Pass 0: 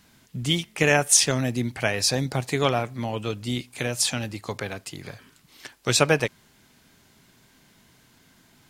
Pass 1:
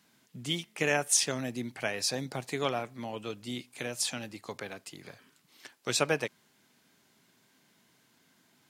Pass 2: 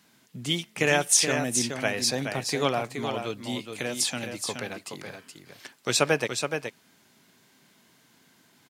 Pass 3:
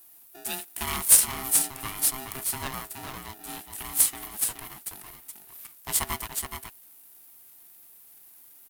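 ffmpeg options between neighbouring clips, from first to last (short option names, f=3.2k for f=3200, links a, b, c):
-af "highpass=170,volume=-8dB"
-af "aecho=1:1:423:0.473,volume=5dB"
-af "aexciter=amount=15.4:drive=8.6:freq=9.4k,aeval=exprs='val(0)*sgn(sin(2*PI*530*n/s))':c=same,volume=-9.5dB"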